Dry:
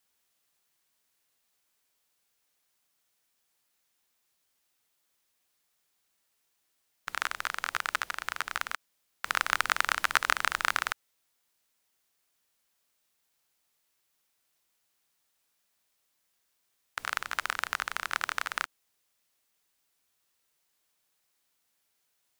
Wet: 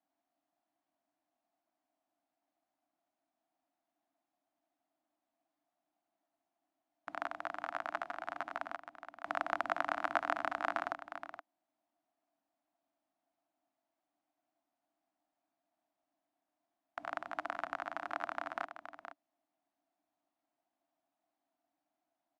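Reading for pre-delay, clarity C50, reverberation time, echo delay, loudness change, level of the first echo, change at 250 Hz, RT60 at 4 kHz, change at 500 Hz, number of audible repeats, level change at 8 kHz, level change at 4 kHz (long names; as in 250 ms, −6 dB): no reverb audible, no reverb audible, no reverb audible, 472 ms, −8.5 dB, −10.0 dB, +4.5 dB, no reverb audible, +5.5 dB, 1, below −25 dB, −18.5 dB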